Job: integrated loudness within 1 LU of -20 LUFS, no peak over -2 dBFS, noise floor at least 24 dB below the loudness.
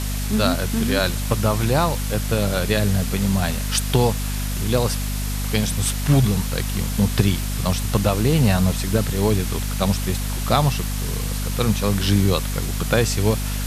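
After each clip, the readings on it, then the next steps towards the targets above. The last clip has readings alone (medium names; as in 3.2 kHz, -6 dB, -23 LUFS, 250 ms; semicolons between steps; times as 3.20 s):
hum 50 Hz; highest harmonic 250 Hz; hum level -23 dBFS; noise floor -25 dBFS; noise floor target -45 dBFS; loudness -21.0 LUFS; peak level -1.5 dBFS; loudness target -20.0 LUFS
-> de-hum 50 Hz, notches 5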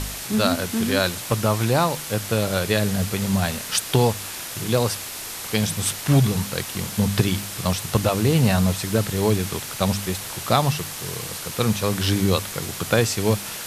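hum not found; noise floor -33 dBFS; noise floor target -47 dBFS
-> noise reduction 14 dB, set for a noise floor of -33 dBFS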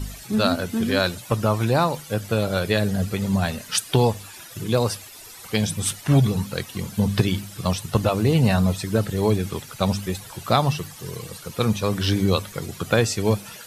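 noise floor -42 dBFS; noise floor target -47 dBFS
-> noise reduction 6 dB, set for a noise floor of -42 dBFS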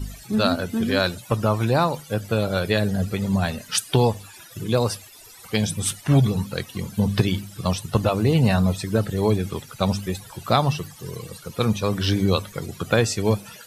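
noise floor -45 dBFS; noise floor target -47 dBFS
-> noise reduction 6 dB, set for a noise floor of -45 dBFS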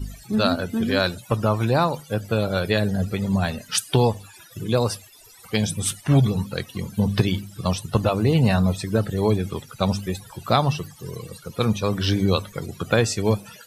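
noise floor -48 dBFS; loudness -23.0 LUFS; peak level -3.5 dBFS; loudness target -20.0 LUFS
-> trim +3 dB; peak limiter -2 dBFS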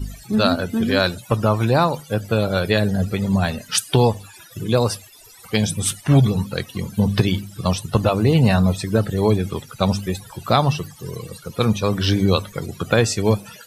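loudness -20.0 LUFS; peak level -2.0 dBFS; noise floor -45 dBFS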